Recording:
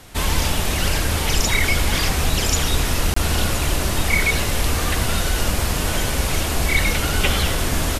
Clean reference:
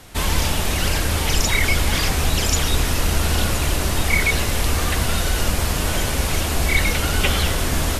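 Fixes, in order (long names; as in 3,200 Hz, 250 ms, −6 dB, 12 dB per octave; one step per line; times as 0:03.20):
repair the gap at 0:03.14, 24 ms
echo removal 73 ms −15 dB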